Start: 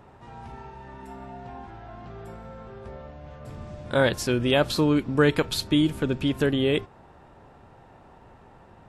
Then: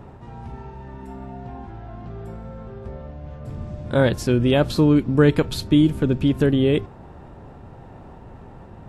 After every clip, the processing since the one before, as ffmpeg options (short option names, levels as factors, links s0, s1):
-af "lowshelf=f=480:g=10.5,areverse,acompressor=mode=upward:threshold=0.0251:ratio=2.5,areverse,volume=0.794"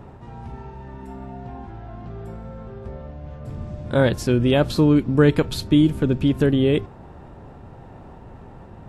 -af anull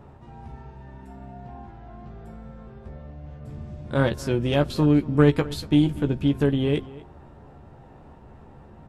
-filter_complex "[0:a]aeval=exprs='0.708*(cos(1*acos(clip(val(0)/0.708,-1,1)))-cos(1*PI/2))+0.0891*(cos(3*acos(clip(val(0)/0.708,-1,1)))-cos(3*PI/2))':c=same,asplit=2[s0][s1];[s1]adelay=14,volume=0.447[s2];[s0][s2]amix=inputs=2:normalize=0,asplit=2[s3][s4];[s4]adelay=239.1,volume=0.112,highshelf=f=4000:g=-5.38[s5];[s3][s5]amix=inputs=2:normalize=0,volume=0.794"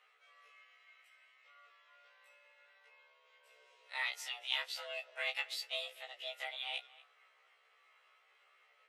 -af "afreqshift=360,highpass=f=2500:t=q:w=2.6,afftfilt=real='re*1.73*eq(mod(b,3),0)':imag='im*1.73*eq(mod(b,3),0)':win_size=2048:overlap=0.75,volume=0.501"